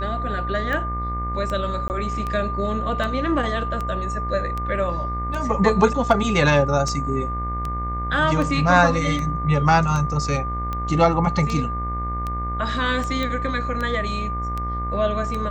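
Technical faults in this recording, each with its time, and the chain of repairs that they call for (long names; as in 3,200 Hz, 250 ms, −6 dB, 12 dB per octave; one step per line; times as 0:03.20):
mains buzz 60 Hz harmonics 37 −28 dBFS
scratch tick 78 rpm −15 dBFS
whistle 1,200 Hz −27 dBFS
0:01.88–0:01.90: drop-out 19 ms
0:13.23: click −14 dBFS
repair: click removal
hum removal 60 Hz, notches 37
notch filter 1,200 Hz, Q 30
repair the gap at 0:01.88, 19 ms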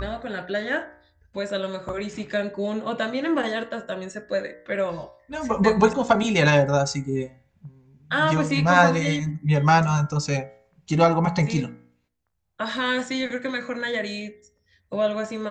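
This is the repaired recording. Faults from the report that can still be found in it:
none of them is left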